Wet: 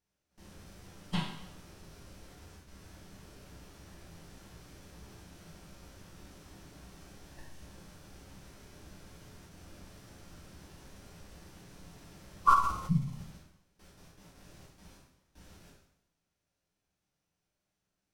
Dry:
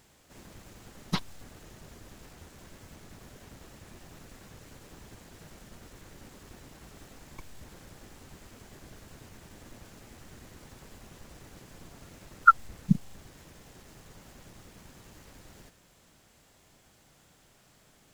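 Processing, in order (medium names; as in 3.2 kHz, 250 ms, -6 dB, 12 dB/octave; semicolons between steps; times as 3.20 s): gate with hold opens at -41 dBFS; plate-style reverb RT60 0.84 s, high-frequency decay 0.95×, DRR -4.5 dB; formant shift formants -4 st; trim -8.5 dB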